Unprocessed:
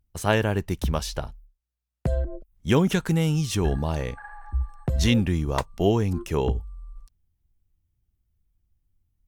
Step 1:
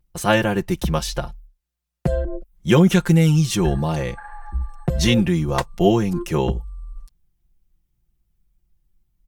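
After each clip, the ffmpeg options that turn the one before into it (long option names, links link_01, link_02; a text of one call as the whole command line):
ffmpeg -i in.wav -af "aecho=1:1:5.7:0.84,volume=3dB" out.wav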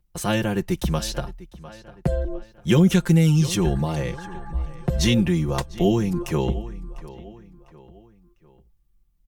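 ffmpeg -i in.wav -filter_complex "[0:a]asplit=2[link_01][link_02];[link_02]adelay=700,lowpass=frequency=5000:poles=1,volume=-19dB,asplit=2[link_03][link_04];[link_04]adelay=700,lowpass=frequency=5000:poles=1,volume=0.44,asplit=2[link_05][link_06];[link_06]adelay=700,lowpass=frequency=5000:poles=1,volume=0.44[link_07];[link_01][link_03][link_05][link_07]amix=inputs=4:normalize=0,acrossover=split=380|3000[link_08][link_09][link_10];[link_09]acompressor=threshold=-27dB:ratio=2.5[link_11];[link_08][link_11][link_10]amix=inputs=3:normalize=0,volume=-1.5dB" out.wav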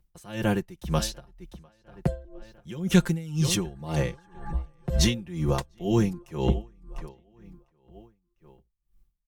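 ffmpeg -i in.wav -af "aeval=exprs='val(0)*pow(10,-23*(0.5-0.5*cos(2*PI*2*n/s))/20)':channel_layout=same,volume=1.5dB" out.wav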